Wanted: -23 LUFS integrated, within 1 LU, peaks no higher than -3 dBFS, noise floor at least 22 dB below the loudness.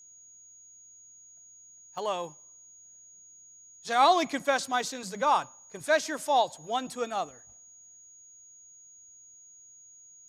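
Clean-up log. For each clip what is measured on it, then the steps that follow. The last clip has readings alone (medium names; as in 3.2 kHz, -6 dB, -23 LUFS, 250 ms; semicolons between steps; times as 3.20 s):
dropouts 1; longest dropout 2.1 ms; steady tone 6.7 kHz; tone level -51 dBFS; loudness -28.0 LUFS; peak level -10.5 dBFS; loudness target -23.0 LUFS
-> interpolate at 1.98 s, 2.1 ms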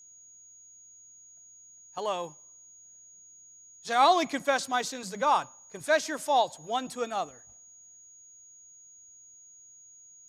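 dropouts 0; steady tone 6.7 kHz; tone level -51 dBFS
-> band-stop 6.7 kHz, Q 30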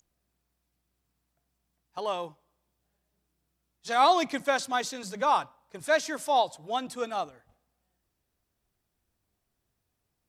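steady tone not found; loudness -28.0 LUFS; peak level -10.5 dBFS; loudness target -23.0 LUFS
-> trim +5 dB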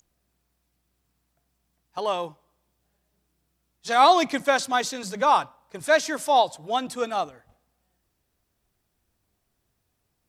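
loudness -23.0 LUFS; peak level -5.5 dBFS; noise floor -76 dBFS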